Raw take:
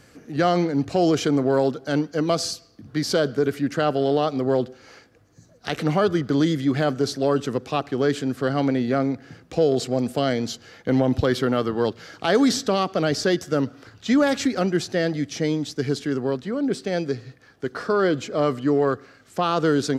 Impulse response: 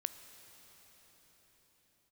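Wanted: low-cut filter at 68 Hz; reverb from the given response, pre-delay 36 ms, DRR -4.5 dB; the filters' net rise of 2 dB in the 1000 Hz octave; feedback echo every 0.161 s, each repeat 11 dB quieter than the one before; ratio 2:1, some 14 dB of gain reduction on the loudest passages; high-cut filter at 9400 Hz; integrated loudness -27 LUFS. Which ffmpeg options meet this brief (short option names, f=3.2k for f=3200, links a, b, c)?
-filter_complex "[0:a]highpass=68,lowpass=9.4k,equalizer=f=1k:t=o:g=3,acompressor=threshold=-41dB:ratio=2,aecho=1:1:161|322|483:0.282|0.0789|0.0221,asplit=2[a][b];[1:a]atrim=start_sample=2205,adelay=36[c];[b][c]afir=irnorm=-1:irlink=0,volume=5dB[d];[a][d]amix=inputs=2:normalize=0,volume=2.5dB"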